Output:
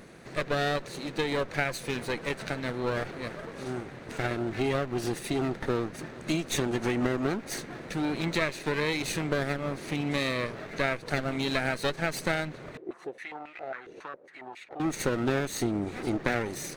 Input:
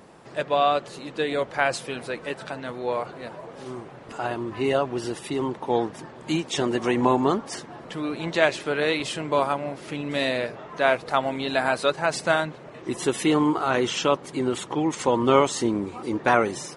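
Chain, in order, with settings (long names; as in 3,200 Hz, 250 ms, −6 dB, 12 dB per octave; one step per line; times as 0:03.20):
lower of the sound and its delayed copy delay 0.47 ms
downward compressor 4 to 1, threshold −27 dBFS, peak gain reduction 13 dB
0:12.77–0:14.80: band-pass on a step sequencer 7.3 Hz 410–2,400 Hz
level +1.5 dB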